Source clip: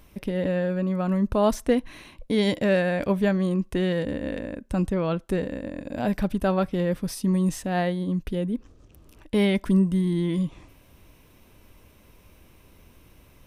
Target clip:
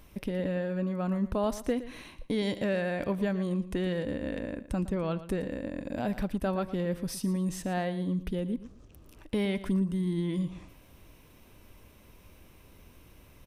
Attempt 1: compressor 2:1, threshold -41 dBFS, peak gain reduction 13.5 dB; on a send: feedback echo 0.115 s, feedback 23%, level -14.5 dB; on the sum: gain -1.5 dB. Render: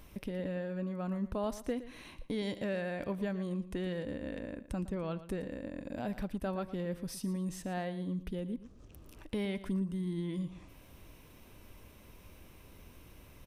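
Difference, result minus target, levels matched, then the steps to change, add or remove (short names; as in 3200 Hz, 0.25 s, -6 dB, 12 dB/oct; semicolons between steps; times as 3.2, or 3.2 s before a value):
compressor: peak gain reduction +6 dB
change: compressor 2:1, threshold -29 dBFS, peak gain reduction 7.5 dB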